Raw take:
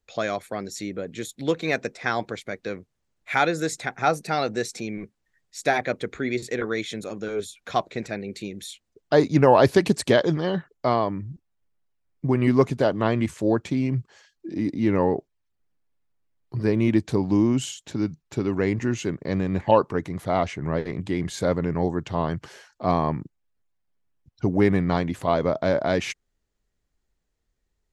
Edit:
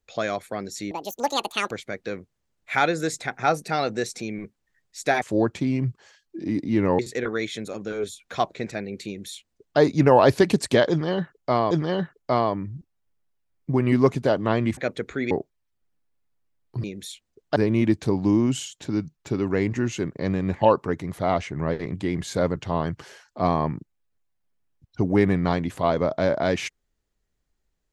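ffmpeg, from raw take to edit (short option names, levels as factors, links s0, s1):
-filter_complex "[0:a]asplit=11[s0][s1][s2][s3][s4][s5][s6][s7][s8][s9][s10];[s0]atrim=end=0.914[s11];[s1]atrim=start=0.91:end=2.3,asetpts=PTS-STARTPTS,asetrate=76734,aresample=44100,atrim=end_sample=35229,asetpts=PTS-STARTPTS[s12];[s2]atrim=start=2.296:end=5.812[s13];[s3]atrim=start=13.318:end=15.092[s14];[s4]atrim=start=6.348:end=11.072[s15];[s5]atrim=start=10.258:end=13.322[s16];[s6]atrim=start=5.808:end=6.352[s17];[s7]atrim=start=15.088:end=16.622[s18];[s8]atrim=start=8.428:end=9.152[s19];[s9]atrim=start=16.618:end=21.622[s20];[s10]atrim=start=21.998[s21];[s11][s12]acrossfade=d=0.004:c1=hsin:c2=hsin[s22];[s22][s13]acrossfade=d=0.004:c1=hsin:c2=hsin[s23];[s23][s14]acrossfade=d=0.004:c1=hsin:c2=hsin[s24];[s24][s15]acrossfade=d=0.004:c1=hsin:c2=hsin[s25];[s25][s16]acrossfade=d=0.004:c1=hsin:c2=hsin[s26];[s26][s17]acrossfade=d=0.004:c1=hsin:c2=hsin[s27];[s27][s18]acrossfade=d=0.004:c1=hsin:c2=hsin[s28];[s28][s19]acrossfade=d=0.004:c1=hsin:c2=hsin[s29];[s29][s20]acrossfade=d=0.004:c1=hsin:c2=hsin[s30];[s30][s21]acrossfade=d=0.004:c1=hsin:c2=hsin"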